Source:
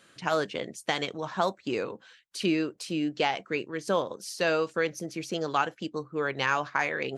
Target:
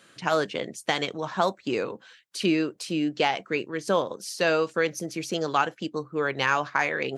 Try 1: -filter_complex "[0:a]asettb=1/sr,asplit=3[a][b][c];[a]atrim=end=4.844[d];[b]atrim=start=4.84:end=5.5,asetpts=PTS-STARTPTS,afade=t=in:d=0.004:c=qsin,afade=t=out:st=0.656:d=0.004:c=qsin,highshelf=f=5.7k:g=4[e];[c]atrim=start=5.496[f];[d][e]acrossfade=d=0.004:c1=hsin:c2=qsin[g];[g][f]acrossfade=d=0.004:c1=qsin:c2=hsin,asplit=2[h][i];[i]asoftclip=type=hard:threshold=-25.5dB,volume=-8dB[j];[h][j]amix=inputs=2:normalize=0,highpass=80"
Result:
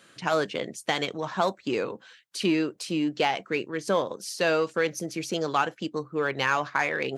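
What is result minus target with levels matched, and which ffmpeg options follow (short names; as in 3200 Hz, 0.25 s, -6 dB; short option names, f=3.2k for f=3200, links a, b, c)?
hard clip: distortion +25 dB
-filter_complex "[0:a]asettb=1/sr,asplit=3[a][b][c];[a]atrim=end=4.844[d];[b]atrim=start=4.84:end=5.5,asetpts=PTS-STARTPTS,afade=t=in:d=0.004:c=qsin,afade=t=out:st=0.656:d=0.004:c=qsin,highshelf=f=5.7k:g=4[e];[c]atrim=start=5.496[f];[d][e]acrossfade=d=0.004:c1=hsin:c2=qsin[g];[g][f]acrossfade=d=0.004:c1=qsin:c2=hsin,asplit=2[h][i];[i]asoftclip=type=hard:threshold=-13.5dB,volume=-8dB[j];[h][j]amix=inputs=2:normalize=0,highpass=80"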